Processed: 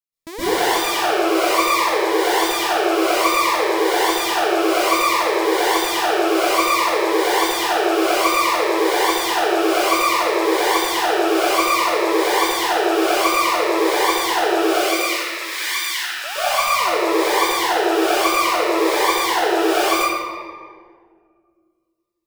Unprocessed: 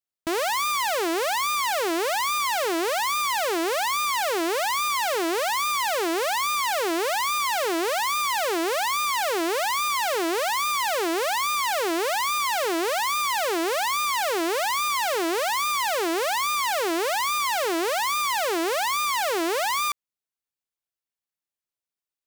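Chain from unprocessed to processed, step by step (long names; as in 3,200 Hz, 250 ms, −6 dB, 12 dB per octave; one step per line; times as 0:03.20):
reverb reduction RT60 1.5 s
0:14.65–0:16.24: high-pass filter 1,500 Hz 24 dB per octave
convolution reverb RT60 1.9 s, pre-delay 117 ms, DRR −15.5 dB
phaser whose notches keep moving one way falling 0.59 Hz
level −5.5 dB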